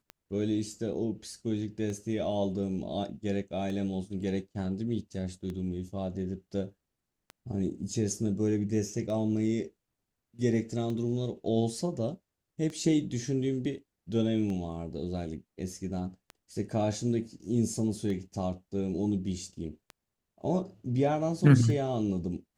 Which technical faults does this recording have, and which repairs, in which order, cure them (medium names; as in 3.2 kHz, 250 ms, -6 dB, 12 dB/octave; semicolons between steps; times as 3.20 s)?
tick 33 1/3 rpm -26 dBFS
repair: de-click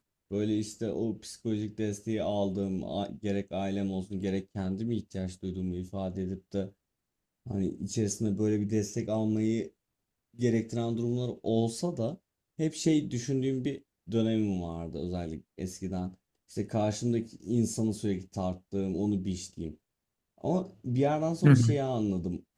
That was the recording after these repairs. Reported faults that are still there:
nothing left